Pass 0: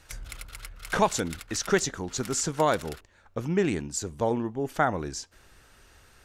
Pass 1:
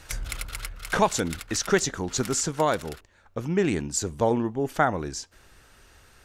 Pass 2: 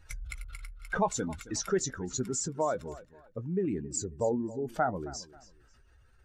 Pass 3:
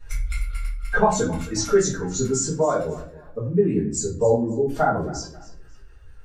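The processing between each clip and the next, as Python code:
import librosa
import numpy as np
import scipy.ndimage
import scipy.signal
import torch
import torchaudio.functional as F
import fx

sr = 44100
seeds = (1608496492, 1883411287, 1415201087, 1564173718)

y1 = fx.rider(x, sr, range_db=5, speed_s=0.5)
y1 = F.gain(torch.from_numpy(y1), 2.5).numpy()
y2 = fx.spec_expand(y1, sr, power=1.8)
y2 = fx.doubler(y2, sr, ms=16.0, db=-13)
y2 = fx.echo_feedback(y2, sr, ms=270, feedback_pct=28, wet_db=-18)
y2 = F.gain(torch.from_numpy(y2), -6.5).numpy()
y3 = fx.room_shoebox(y2, sr, seeds[0], volume_m3=38.0, walls='mixed', distance_m=1.7)
y3 = F.gain(torch.from_numpy(y3), -1.5).numpy()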